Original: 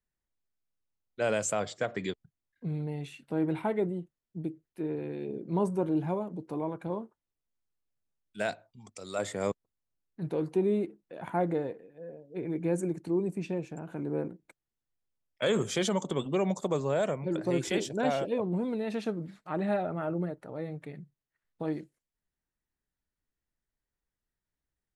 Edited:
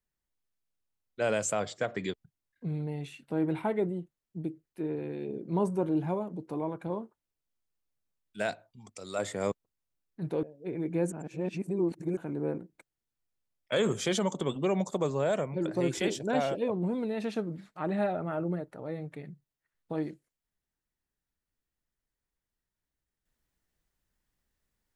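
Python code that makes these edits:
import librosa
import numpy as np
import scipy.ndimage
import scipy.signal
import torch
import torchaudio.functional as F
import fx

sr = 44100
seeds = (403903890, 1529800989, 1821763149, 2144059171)

y = fx.edit(x, sr, fx.cut(start_s=10.43, length_s=1.7),
    fx.reverse_span(start_s=12.82, length_s=1.05), tone=tone)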